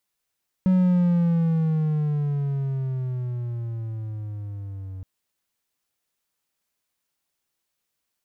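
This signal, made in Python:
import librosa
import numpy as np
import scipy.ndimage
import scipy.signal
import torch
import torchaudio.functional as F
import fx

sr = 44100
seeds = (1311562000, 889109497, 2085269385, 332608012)

y = fx.riser_tone(sr, length_s=4.37, level_db=-13.0, wave='triangle', hz=187.0, rise_st=-12.0, swell_db=-17.5)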